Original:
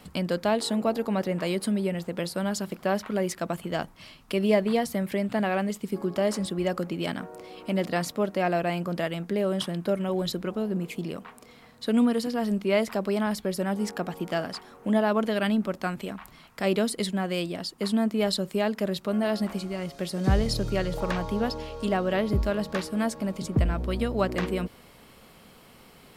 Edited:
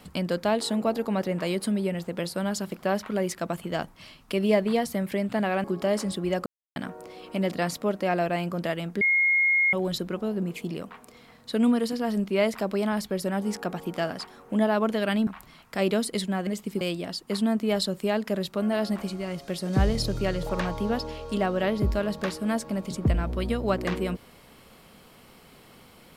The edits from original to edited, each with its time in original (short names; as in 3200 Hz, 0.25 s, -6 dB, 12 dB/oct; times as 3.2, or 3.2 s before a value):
5.64–5.98 move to 17.32
6.8–7.1 mute
9.35–10.07 bleep 2150 Hz -18.5 dBFS
15.61–16.12 cut